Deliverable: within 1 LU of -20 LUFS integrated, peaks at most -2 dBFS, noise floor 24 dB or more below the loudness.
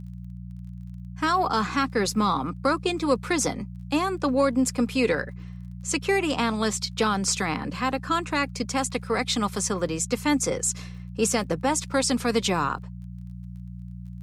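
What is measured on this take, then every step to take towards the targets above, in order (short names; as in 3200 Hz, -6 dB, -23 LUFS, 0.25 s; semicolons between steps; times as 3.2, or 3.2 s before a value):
ticks 24/s; hum 60 Hz; harmonics up to 180 Hz; hum level -35 dBFS; loudness -25.5 LUFS; peak -9.5 dBFS; loudness target -20.0 LUFS
-> de-click; de-hum 60 Hz, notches 3; gain +5.5 dB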